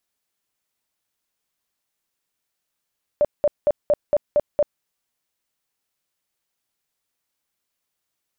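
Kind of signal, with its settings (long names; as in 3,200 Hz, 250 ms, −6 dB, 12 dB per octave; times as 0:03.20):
tone bursts 590 Hz, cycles 22, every 0.23 s, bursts 7, −13 dBFS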